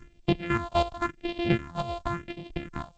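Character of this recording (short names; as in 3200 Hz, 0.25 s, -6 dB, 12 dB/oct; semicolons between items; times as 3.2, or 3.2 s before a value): a buzz of ramps at a fixed pitch in blocks of 128 samples; phasing stages 4, 0.92 Hz, lowest notch 290–1400 Hz; chopped level 4 Hz, depth 65%, duty 30%; G.722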